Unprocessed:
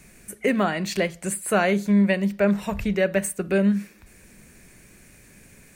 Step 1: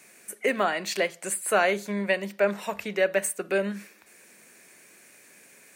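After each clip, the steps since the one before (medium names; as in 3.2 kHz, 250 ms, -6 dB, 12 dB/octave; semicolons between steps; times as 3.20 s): high-pass 420 Hz 12 dB/octave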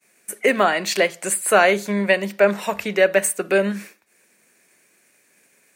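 expander -44 dBFS; trim +7.5 dB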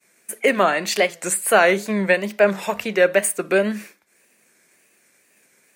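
wow and flutter 93 cents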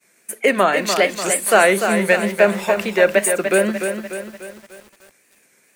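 bit-crushed delay 295 ms, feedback 55%, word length 7-bit, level -7 dB; trim +1.5 dB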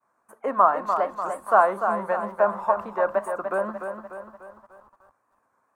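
FFT filter 110 Hz 0 dB, 170 Hz -13 dB, 270 Hz -6 dB, 390 Hz -12 dB, 1.1 kHz +11 dB, 2.2 kHz -25 dB; trim -4.5 dB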